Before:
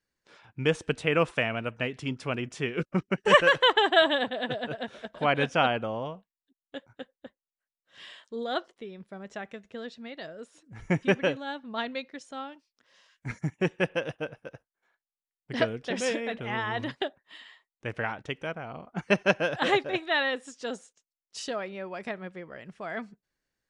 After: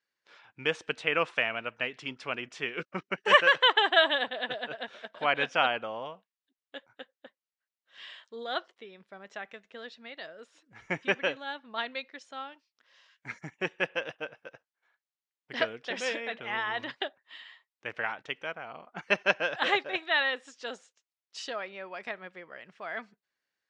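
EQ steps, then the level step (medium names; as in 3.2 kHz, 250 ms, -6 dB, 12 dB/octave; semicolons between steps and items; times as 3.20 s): high-pass 1.5 kHz 6 dB/octave; tape spacing loss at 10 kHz 30 dB; treble shelf 3.3 kHz +10.5 dB; +6.0 dB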